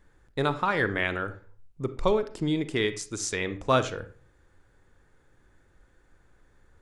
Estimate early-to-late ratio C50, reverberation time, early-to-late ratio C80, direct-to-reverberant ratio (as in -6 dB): 13.5 dB, 0.45 s, 18.5 dB, 11.5 dB